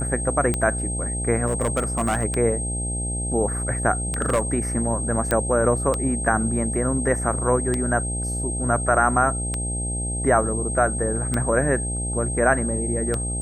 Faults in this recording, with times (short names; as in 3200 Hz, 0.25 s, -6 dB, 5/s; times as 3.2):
buzz 60 Hz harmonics 14 -28 dBFS
tick 33 1/3 rpm -10 dBFS
tone 8400 Hz -28 dBFS
1.46–2.25 clipped -17 dBFS
4.22–4.41 clipped -14.5 dBFS
5.31 pop -8 dBFS